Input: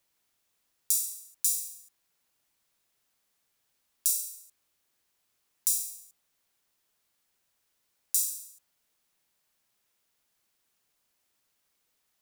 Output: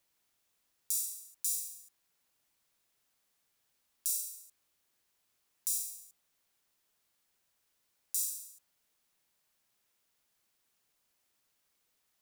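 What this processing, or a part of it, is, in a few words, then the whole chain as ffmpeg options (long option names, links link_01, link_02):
stacked limiters: -af "alimiter=limit=-6.5dB:level=0:latency=1:release=91,alimiter=limit=-9.5dB:level=0:latency=1:release=394,volume=-1.5dB"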